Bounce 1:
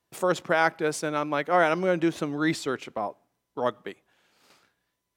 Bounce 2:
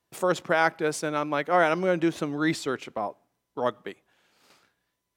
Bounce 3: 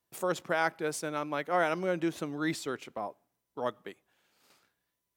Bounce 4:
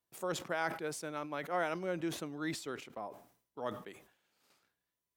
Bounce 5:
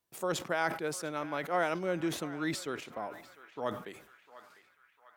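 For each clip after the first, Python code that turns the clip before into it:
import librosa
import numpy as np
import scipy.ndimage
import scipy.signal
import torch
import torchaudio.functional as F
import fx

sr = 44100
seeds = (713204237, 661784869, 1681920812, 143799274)

y1 = x
y2 = fx.high_shelf(y1, sr, hz=11000.0, db=11.0)
y2 = y2 * 10.0 ** (-6.5 / 20.0)
y3 = fx.sustainer(y2, sr, db_per_s=110.0)
y3 = y3 * 10.0 ** (-6.5 / 20.0)
y4 = fx.echo_banded(y3, sr, ms=700, feedback_pct=60, hz=1700.0, wet_db=-14.5)
y4 = y4 * 10.0 ** (4.0 / 20.0)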